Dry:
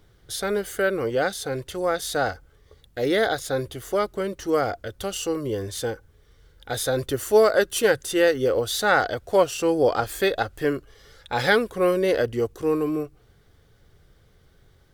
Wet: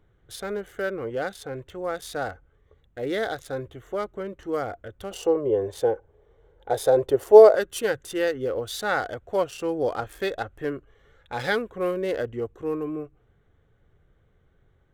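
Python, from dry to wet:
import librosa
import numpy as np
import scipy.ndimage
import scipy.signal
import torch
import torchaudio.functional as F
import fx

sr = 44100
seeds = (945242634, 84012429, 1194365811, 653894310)

y = fx.wiener(x, sr, points=9)
y = fx.band_shelf(y, sr, hz=590.0, db=12.0, octaves=1.7, at=(5.11, 7.55))
y = y * 10.0 ** (-5.5 / 20.0)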